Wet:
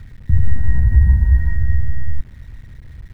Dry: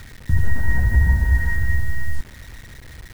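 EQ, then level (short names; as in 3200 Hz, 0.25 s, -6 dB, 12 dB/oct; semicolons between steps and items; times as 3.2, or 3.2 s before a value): tone controls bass +13 dB, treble -8 dB; -8.5 dB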